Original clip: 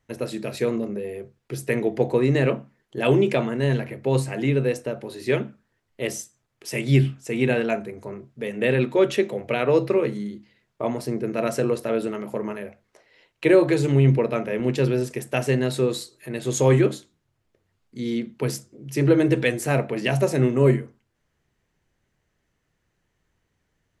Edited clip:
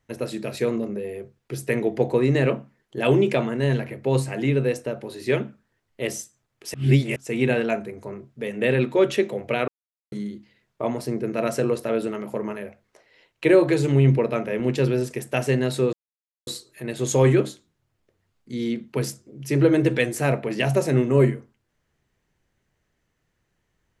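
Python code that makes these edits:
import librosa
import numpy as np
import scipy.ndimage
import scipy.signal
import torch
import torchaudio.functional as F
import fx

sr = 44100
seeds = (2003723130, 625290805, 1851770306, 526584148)

y = fx.edit(x, sr, fx.reverse_span(start_s=6.74, length_s=0.42),
    fx.silence(start_s=9.68, length_s=0.44),
    fx.insert_silence(at_s=15.93, length_s=0.54), tone=tone)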